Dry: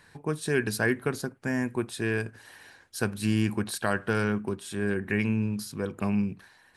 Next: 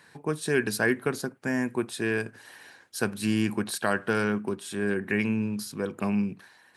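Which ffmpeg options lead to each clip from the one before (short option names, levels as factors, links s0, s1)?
-af "highpass=150,volume=1.19"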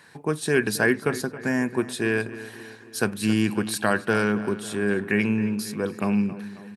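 -filter_complex "[0:a]asplit=2[s0][s1];[s1]adelay=271,lowpass=f=3600:p=1,volume=0.178,asplit=2[s2][s3];[s3]adelay=271,lowpass=f=3600:p=1,volume=0.55,asplit=2[s4][s5];[s5]adelay=271,lowpass=f=3600:p=1,volume=0.55,asplit=2[s6][s7];[s7]adelay=271,lowpass=f=3600:p=1,volume=0.55,asplit=2[s8][s9];[s9]adelay=271,lowpass=f=3600:p=1,volume=0.55[s10];[s0][s2][s4][s6][s8][s10]amix=inputs=6:normalize=0,volume=1.5"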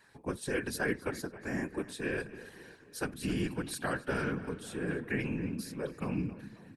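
-af "afftfilt=real='hypot(re,im)*cos(2*PI*random(0))':imag='hypot(re,im)*sin(2*PI*random(1))':win_size=512:overlap=0.75,volume=0.562"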